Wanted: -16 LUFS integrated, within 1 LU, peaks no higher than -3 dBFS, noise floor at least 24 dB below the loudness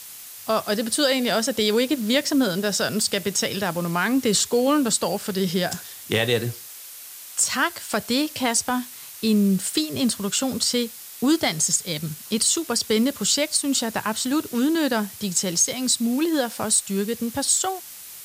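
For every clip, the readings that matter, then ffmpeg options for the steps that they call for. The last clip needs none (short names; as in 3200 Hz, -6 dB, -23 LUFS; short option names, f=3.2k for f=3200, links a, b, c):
noise floor -40 dBFS; noise floor target -46 dBFS; loudness -22.0 LUFS; peak -7.5 dBFS; loudness target -16.0 LUFS
-> -af "afftdn=nr=6:nf=-40"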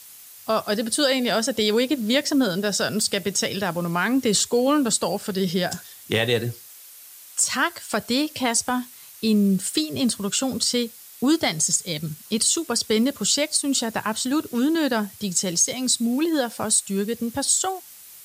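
noise floor -45 dBFS; noise floor target -47 dBFS
-> -af "afftdn=nr=6:nf=-45"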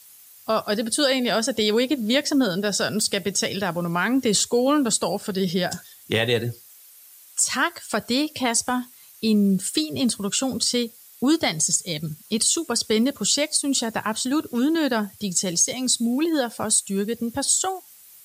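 noise floor -49 dBFS; loudness -22.5 LUFS; peak -7.5 dBFS; loudness target -16.0 LUFS
-> -af "volume=6.5dB,alimiter=limit=-3dB:level=0:latency=1"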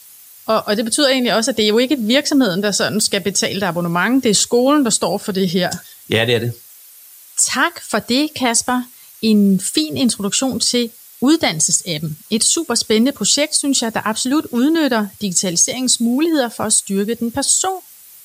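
loudness -16.0 LUFS; peak -3.0 dBFS; noise floor -42 dBFS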